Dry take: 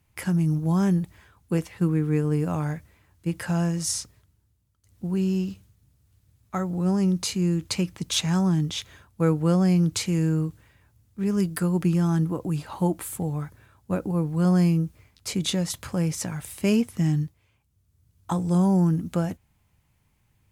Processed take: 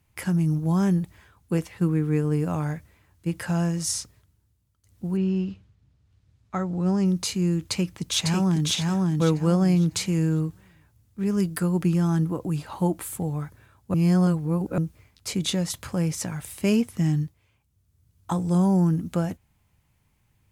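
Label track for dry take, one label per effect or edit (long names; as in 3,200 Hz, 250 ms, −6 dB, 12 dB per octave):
5.160000	7.040000	low-pass filter 2,800 Hz → 7,400 Hz
7.660000	8.660000	delay throw 550 ms, feedback 25%, level −1.5 dB
13.940000	14.780000	reverse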